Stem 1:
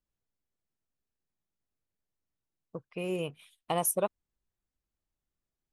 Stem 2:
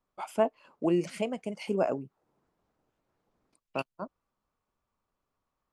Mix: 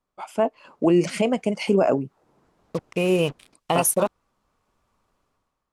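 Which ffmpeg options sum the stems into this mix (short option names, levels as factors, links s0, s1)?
-filter_complex "[0:a]acrusher=bits=7:mix=0:aa=0.5,volume=1.12[s0];[1:a]volume=1.19[s1];[s0][s1]amix=inputs=2:normalize=0,lowpass=11000,dynaudnorm=f=140:g=7:m=3.98,alimiter=limit=0.316:level=0:latency=1:release=20"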